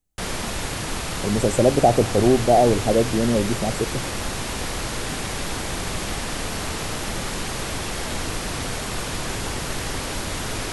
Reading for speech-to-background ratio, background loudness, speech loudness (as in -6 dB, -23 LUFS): 7.5 dB, -27.5 LUFS, -20.0 LUFS